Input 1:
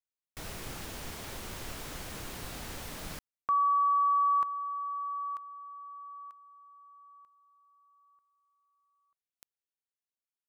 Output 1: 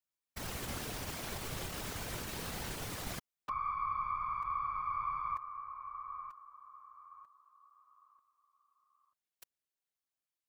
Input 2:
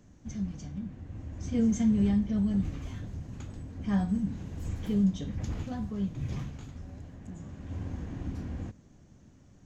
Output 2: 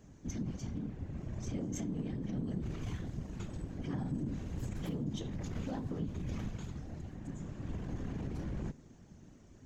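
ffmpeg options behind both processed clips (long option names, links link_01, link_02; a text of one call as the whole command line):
ffmpeg -i in.wav -af "acompressor=threshold=-35dB:ratio=20:attack=1.8:release=25:knee=1:detection=rms,aeval=exprs='0.0562*(cos(1*acos(clip(val(0)/0.0562,-1,1)))-cos(1*PI/2))+0.00224*(cos(3*acos(clip(val(0)/0.0562,-1,1)))-cos(3*PI/2))+0.00447*(cos(4*acos(clip(val(0)/0.0562,-1,1)))-cos(4*PI/2))':channel_layout=same,afftfilt=real='hypot(re,im)*cos(2*PI*random(0))':imag='hypot(re,im)*sin(2*PI*random(1))':win_size=512:overlap=0.75,volume=7.5dB" out.wav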